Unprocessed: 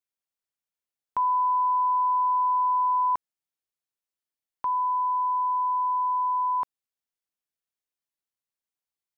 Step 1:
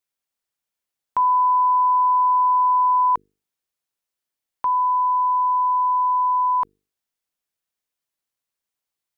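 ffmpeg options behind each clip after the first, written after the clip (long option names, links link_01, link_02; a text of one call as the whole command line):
ffmpeg -i in.wav -af "bandreject=frequency=50:width_type=h:width=6,bandreject=frequency=100:width_type=h:width=6,bandreject=frequency=150:width_type=h:width=6,bandreject=frequency=200:width_type=h:width=6,bandreject=frequency=250:width_type=h:width=6,bandreject=frequency=300:width_type=h:width=6,bandreject=frequency=350:width_type=h:width=6,bandreject=frequency=400:width_type=h:width=6,bandreject=frequency=450:width_type=h:width=6,volume=6dB" out.wav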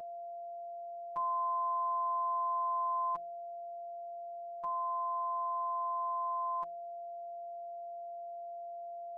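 ffmpeg -i in.wav -af "aeval=exprs='val(0)+0.0501*sin(2*PI*660*n/s)':channel_layout=same,equalizer=frequency=1200:width=0.34:gain=-5.5,afftfilt=real='hypot(re,im)*cos(PI*b)':imag='0':win_size=1024:overlap=0.75,volume=-8dB" out.wav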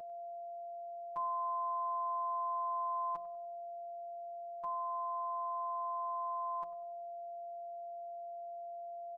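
ffmpeg -i in.wav -filter_complex "[0:a]asplit=2[link_01][link_02];[link_02]adelay=97,lowpass=frequency=1200:poles=1,volume=-14dB,asplit=2[link_03][link_04];[link_04]adelay=97,lowpass=frequency=1200:poles=1,volume=0.48,asplit=2[link_05][link_06];[link_06]adelay=97,lowpass=frequency=1200:poles=1,volume=0.48,asplit=2[link_07][link_08];[link_08]adelay=97,lowpass=frequency=1200:poles=1,volume=0.48,asplit=2[link_09][link_10];[link_10]adelay=97,lowpass=frequency=1200:poles=1,volume=0.48[link_11];[link_01][link_03][link_05][link_07][link_09][link_11]amix=inputs=6:normalize=0,volume=-2.5dB" out.wav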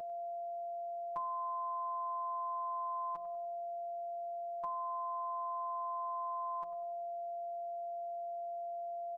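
ffmpeg -i in.wav -af "acompressor=threshold=-40dB:ratio=6,volume=4dB" out.wav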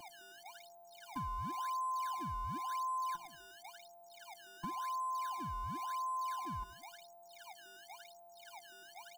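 ffmpeg -i in.wav -filter_complex "[0:a]asplit=2[link_01][link_02];[link_02]acrusher=samples=23:mix=1:aa=0.000001:lfo=1:lforange=36.8:lforate=0.94,volume=-4dB[link_03];[link_01][link_03]amix=inputs=2:normalize=0,afftfilt=real='re*eq(mod(floor(b*sr/1024/350),2),0)':imag='im*eq(mod(floor(b*sr/1024/350),2),0)':win_size=1024:overlap=0.75,volume=-1.5dB" out.wav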